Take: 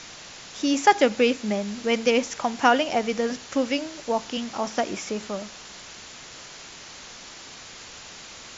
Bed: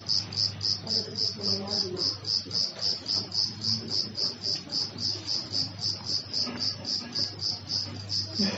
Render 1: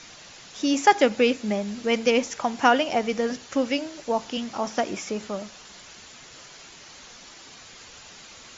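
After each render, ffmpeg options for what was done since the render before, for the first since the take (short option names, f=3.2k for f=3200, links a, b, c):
-af "afftdn=nr=6:nf=-43"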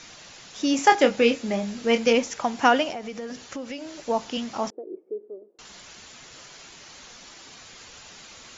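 -filter_complex "[0:a]asettb=1/sr,asplit=3[a][b][c];[a]atrim=end=0.764[d];[b]atrim=start=0.76:end=2.15,asetpts=PTS-STARTPTS,afade=t=in:d=0.004:c=qsin,afade=t=out:st=1.386:d=0.004:c=qsin,asplit=2[e][f];[f]adelay=26,volume=-7dB[g];[e][g]amix=inputs=2:normalize=0,atrim=end_sample=61299[h];[c]atrim=start=2.146[i];[d][h]acrossfade=d=0.004:c1=hsin:c2=qsin[j];[j][i]acrossfade=d=0.004:c1=qsin:c2=hsin,asettb=1/sr,asplit=3[k][l][m];[k]atrim=end=2.914[n];[l]atrim=start=2.91:end=3.97,asetpts=PTS-STARTPTS,afade=t=in:d=0.004:c=qsin,afade=t=out:st=1.056:d=0.004:c=qsin,acompressor=threshold=-32dB:ratio=4:attack=3.2:release=140:knee=1:detection=peak[o];[m]atrim=start=3.966[p];[n][o]acrossfade=d=0.004:c1=hsin:c2=qsin[q];[q][p]acrossfade=d=0.004:c1=qsin:c2=hsin,asettb=1/sr,asplit=3[r][s][t];[r]atrim=end=4.704[u];[s]atrim=start=4.7:end=5.59,asetpts=PTS-STARTPTS,afade=t=in:d=0.004:c=qsin,afade=t=out:st=0.886:d=0.004:c=qsin,asuperpass=centerf=390:order=4:qfactor=3.3[v];[t]atrim=start=5.586[w];[u][v]acrossfade=d=0.004:c1=hsin:c2=qsin[x];[x][w]acrossfade=d=0.004:c1=qsin:c2=hsin"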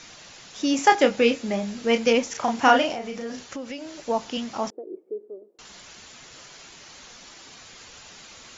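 -filter_complex "[0:a]asettb=1/sr,asplit=3[a][b][c];[a]atrim=end=2.314[d];[b]atrim=start=2.31:end=3.43,asetpts=PTS-STARTPTS,afade=t=in:d=0.004:c=qsin,afade=t=out:st=1.116:d=0.004:c=qsin,asplit=2[e][f];[f]adelay=35,volume=-3.5dB[g];[e][g]amix=inputs=2:normalize=0,atrim=end_sample=49392[h];[c]atrim=start=3.426[i];[d][h]acrossfade=d=0.004:c1=hsin:c2=qsin[j];[j][i]acrossfade=d=0.004:c1=qsin:c2=hsin"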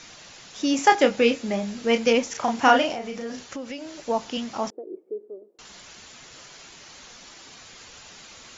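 -af anull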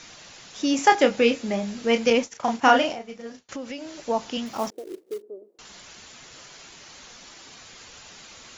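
-filter_complex "[0:a]asettb=1/sr,asplit=3[a][b][c];[a]atrim=end=2.104[d];[b]atrim=start=2.1:end=3.49,asetpts=PTS-STARTPTS,afade=t=in:d=0.004:c=qsin,afade=t=out:st=1.386:d=0.004:c=qsin,agate=range=-33dB:threshold=-28dB:ratio=3:release=100:detection=peak[e];[c]atrim=start=3.486[f];[d][e]acrossfade=d=0.004:c1=hsin:c2=qsin[g];[g][f]acrossfade=d=0.004:c1=qsin:c2=hsin,asettb=1/sr,asplit=3[h][i][j];[h]atrim=end=4.464[k];[i]atrim=start=4.46:end=5.22,asetpts=PTS-STARTPTS,afade=t=in:d=0.004:c=qsin,afade=t=out:st=0.756:d=0.004:c=qsin,acrusher=bits=4:mode=log:mix=0:aa=0.000001[l];[j]atrim=start=5.216[m];[k][l]acrossfade=d=0.004:c1=hsin:c2=qsin[n];[n][m]acrossfade=d=0.004:c1=qsin:c2=hsin"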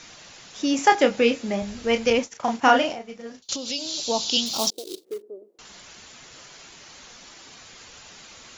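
-filter_complex "[0:a]asettb=1/sr,asplit=3[a][b][c];[a]atrim=end=1.624[d];[b]atrim=start=1.62:end=2.19,asetpts=PTS-STARTPTS,afade=t=in:d=0.004:c=qsin,afade=t=out:st=0.566:d=0.004:c=qsin,lowshelf=f=110:t=q:w=1.5:g=12.5[e];[c]atrim=start=2.186[f];[d][e]acrossfade=d=0.004:c1=hsin:c2=qsin[g];[g][f]acrossfade=d=0.004:c1=qsin:c2=hsin,asettb=1/sr,asplit=3[h][i][j];[h]atrim=end=3.424[k];[i]atrim=start=3.42:end=5.05,asetpts=PTS-STARTPTS,afade=t=in:d=0.004:c=qsin,afade=t=out:st=1.626:d=0.004:c=qsin,highshelf=f=2.7k:t=q:w=3:g=13[l];[j]atrim=start=5.046[m];[k][l]acrossfade=d=0.004:c1=hsin:c2=qsin[n];[n][m]acrossfade=d=0.004:c1=qsin:c2=hsin"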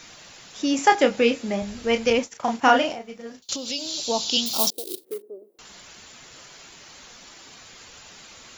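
-af "aexciter=amount=2.8:drive=6.7:freq=8.7k"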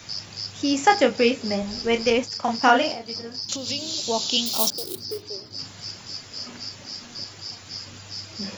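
-filter_complex "[1:a]volume=-6dB[a];[0:a][a]amix=inputs=2:normalize=0"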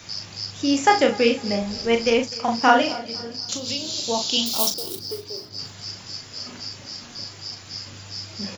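-filter_complex "[0:a]asplit=2[a][b];[b]adelay=39,volume=-7dB[c];[a][c]amix=inputs=2:normalize=0,aecho=1:1:251|502|753:0.0891|0.0365|0.015"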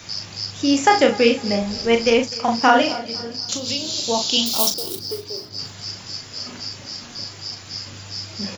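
-af "volume=3dB,alimiter=limit=-2dB:level=0:latency=1"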